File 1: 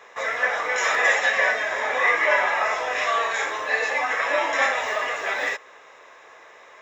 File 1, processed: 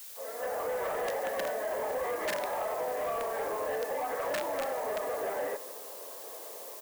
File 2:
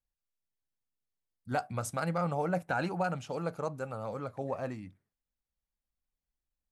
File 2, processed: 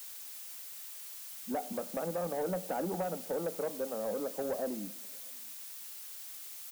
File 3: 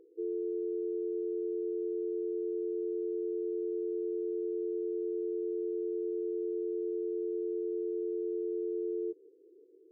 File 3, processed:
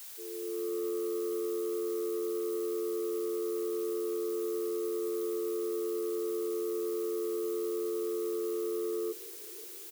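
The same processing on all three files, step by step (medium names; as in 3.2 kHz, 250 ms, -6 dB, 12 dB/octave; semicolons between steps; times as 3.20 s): fade-in on the opening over 0.90 s; bass shelf 240 Hz -7 dB; level rider gain up to 3.5 dB; Chebyshev low-pass 510 Hz, order 2; integer overflow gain 18.5 dB; peaking EQ 350 Hz -2.5 dB 0.37 oct; compression 6:1, threshold -33 dBFS; added noise blue -51 dBFS; elliptic high-pass 190 Hz, stop band 40 dB; Schroeder reverb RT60 0.98 s, combs from 27 ms, DRR 17 dB; saturation -33.5 dBFS; echo from a far wall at 110 m, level -30 dB; trim +6 dB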